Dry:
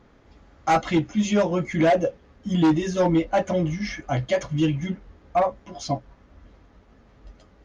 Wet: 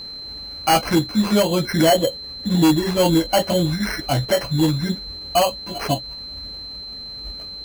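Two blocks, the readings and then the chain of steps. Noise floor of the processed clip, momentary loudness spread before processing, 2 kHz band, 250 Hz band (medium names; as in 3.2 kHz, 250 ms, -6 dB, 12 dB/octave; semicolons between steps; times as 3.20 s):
-34 dBFS, 10 LU, +4.0 dB, +3.5 dB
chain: in parallel at +1 dB: compression, threshold -31 dBFS, peak gain reduction 14 dB; on the sum: sample-and-hold 12×; whistle 4.1 kHz -33 dBFS; trim +1.5 dB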